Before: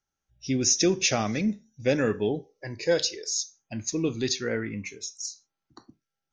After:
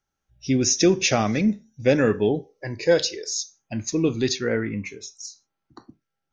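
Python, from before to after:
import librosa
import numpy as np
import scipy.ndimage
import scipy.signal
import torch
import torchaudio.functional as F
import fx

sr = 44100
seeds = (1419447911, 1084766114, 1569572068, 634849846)

y = fx.high_shelf(x, sr, hz=4000.0, db=fx.steps((0.0, -6.5), (4.37, -11.5)))
y = y * 10.0 ** (5.5 / 20.0)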